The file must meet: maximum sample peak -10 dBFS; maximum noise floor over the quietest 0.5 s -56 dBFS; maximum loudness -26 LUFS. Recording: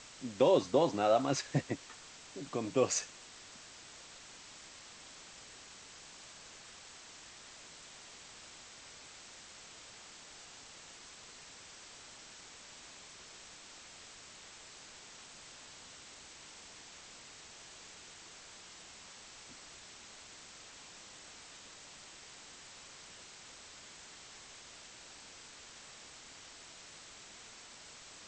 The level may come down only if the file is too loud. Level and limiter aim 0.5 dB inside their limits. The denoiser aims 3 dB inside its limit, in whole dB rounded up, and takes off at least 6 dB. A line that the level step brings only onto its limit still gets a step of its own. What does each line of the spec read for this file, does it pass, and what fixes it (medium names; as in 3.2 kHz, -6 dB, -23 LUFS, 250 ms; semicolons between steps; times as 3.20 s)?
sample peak -16.0 dBFS: pass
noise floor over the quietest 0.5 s -54 dBFS: fail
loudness -41.5 LUFS: pass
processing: noise reduction 6 dB, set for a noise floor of -54 dBFS